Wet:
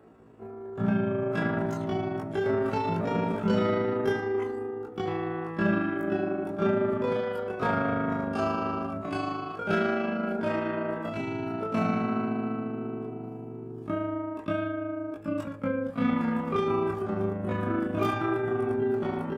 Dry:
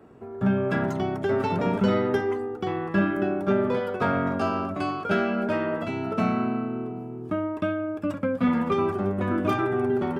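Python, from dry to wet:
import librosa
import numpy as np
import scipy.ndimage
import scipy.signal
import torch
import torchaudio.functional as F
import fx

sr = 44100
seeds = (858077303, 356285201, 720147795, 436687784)

y = fx.stretch_grains(x, sr, factor=1.9, grain_ms=77.0)
y = F.gain(torch.from_numpy(y), -2.0).numpy()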